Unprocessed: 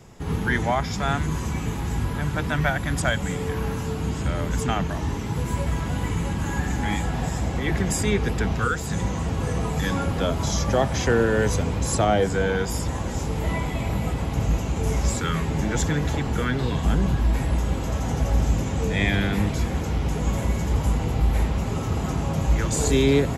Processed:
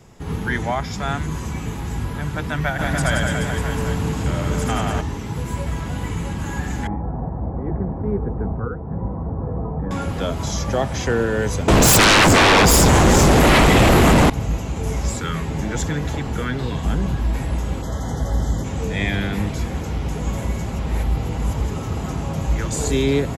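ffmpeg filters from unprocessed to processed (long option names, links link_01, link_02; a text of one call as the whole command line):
ffmpeg -i in.wav -filter_complex "[0:a]asplit=3[link_01][link_02][link_03];[link_01]afade=type=out:start_time=2.78:duration=0.02[link_04];[link_02]aecho=1:1:80|176|291.2|429.4|595.3|794.4:0.794|0.631|0.501|0.398|0.316|0.251,afade=type=in:start_time=2.78:duration=0.02,afade=type=out:start_time=5:duration=0.02[link_05];[link_03]afade=type=in:start_time=5:duration=0.02[link_06];[link_04][link_05][link_06]amix=inputs=3:normalize=0,asettb=1/sr,asplit=3[link_07][link_08][link_09];[link_07]atrim=end=6.874[link_10];[link_08]atrim=start=6.87:end=9.91,asetpts=PTS-STARTPTS,afade=type=in:duration=0.004:curve=qsin,afade=type=out:start_time=3.036:duration=0.004:curve=qsin,lowpass=frequency=1000:width=0.5412,lowpass=frequency=1000:width=1.3066[link_11];[link_09]atrim=start=9.906[link_12];[link_10][link_11]acrossfade=duration=0.004:curve1=hsin:curve2=qsin[link_13];[link_13][link_12]acrossfade=duration=0.004:curve1=qsin:curve2=hsin,asettb=1/sr,asplit=3[link_14][link_15][link_16];[link_14]atrim=end=11.684[link_17];[link_15]atrim=start=11.68:end=14.3,asetpts=PTS-STARTPTS,afade=type=in:duration=0.004:curve=qsin,afade=type=out:start_time=2.616:duration=0.004:curve=qsin,aeval=exprs='0.355*sin(PI/2*7.08*val(0)/0.355)':channel_layout=same[link_18];[link_16]atrim=start=14.296[link_19];[link_17][link_18]acrossfade=duration=0.004:curve1=hsin:curve2=qsin[link_20];[link_20][link_19]acrossfade=duration=0.004:curve1=qsin:curve2=hsin,asplit=3[link_21][link_22][link_23];[link_21]afade=type=out:start_time=17.81:duration=0.02[link_24];[link_22]asuperstop=centerf=2500:order=20:qfactor=2.9,afade=type=in:start_time=17.81:duration=0.02,afade=type=out:start_time=18.63:duration=0.02[link_25];[link_23]afade=type=in:start_time=18.63:duration=0.02[link_26];[link_24][link_25][link_26]amix=inputs=3:normalize=0,asplit=3[link_27][link_28][link_29];[link_27]atrim=end=20.662[link_30];[link_28]atrim=start=20.658:end=21.712,asetpts=PTS-STARTPTS,areverse[link_31];[link_29]atrim=start=21.708[link_32];[link_30][link_31]acrossfade=duration=0.004:curve1=hsin:curve2=hsin[link_33];[link_33][link_32]acrossfade=duration=0.004:curve1=hsin:curve2=hsin" out.wav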